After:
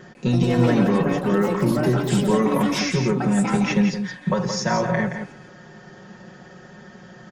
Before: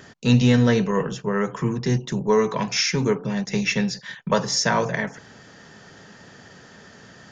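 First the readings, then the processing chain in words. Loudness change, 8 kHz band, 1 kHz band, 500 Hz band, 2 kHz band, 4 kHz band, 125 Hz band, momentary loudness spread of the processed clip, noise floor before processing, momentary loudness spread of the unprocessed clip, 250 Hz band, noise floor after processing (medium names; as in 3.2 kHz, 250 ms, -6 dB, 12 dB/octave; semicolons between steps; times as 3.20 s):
+1.0 dB, no reading, +1.5 dB, +0.5 dB, -1.0 dB, -4.5 dB, +1.0 dB, 6 LU, -48 dBFS, 8 LU, +3.0 dB, -46 dBFS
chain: treble shelf 2 kHz -11.5 dB; comb 5.5 ms, depth 78%; peak limiter -14 dBFS, peak gain reduction 8 dB; ever faster or slower copies 150 ms, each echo +6 st, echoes 3, each echo -6 dB; on a send: delay 171 ms -7.5 dB; on the sum: trim +2 dB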